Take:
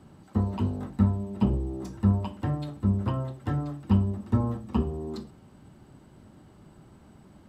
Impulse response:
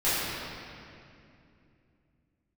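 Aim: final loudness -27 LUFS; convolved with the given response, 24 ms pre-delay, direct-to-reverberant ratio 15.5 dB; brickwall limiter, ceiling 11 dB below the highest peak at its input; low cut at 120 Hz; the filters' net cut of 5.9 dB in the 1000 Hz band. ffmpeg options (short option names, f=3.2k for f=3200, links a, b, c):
-filter_complex "[0:a]highpass=120,equalizer=f=1k:t=o:g=-7.5,alimiter=limit=-24dB:level=0:latency=1,asplit=2[a][b];[1:a]atrim=start_sample=2205,adelay=24[c];[b][c]afir=irnorm=-1:irlink=0,volume=-30dB[d];[a][d]amix=inputs=2:normalize=0,volume=7.5dB"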